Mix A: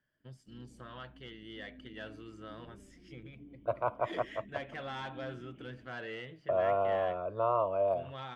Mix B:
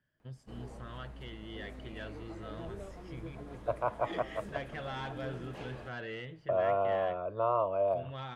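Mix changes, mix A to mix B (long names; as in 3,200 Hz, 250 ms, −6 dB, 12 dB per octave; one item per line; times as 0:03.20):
first voice: remove high-pass filter 190 Hz 6 dB per octave
background: remove formant resonators in series i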